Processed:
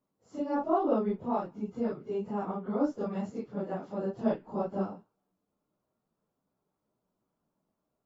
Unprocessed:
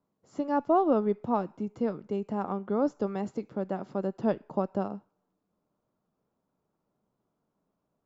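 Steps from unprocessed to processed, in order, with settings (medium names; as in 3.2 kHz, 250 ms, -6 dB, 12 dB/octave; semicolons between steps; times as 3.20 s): phase randomisation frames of 100 ms; trim -2.5 dB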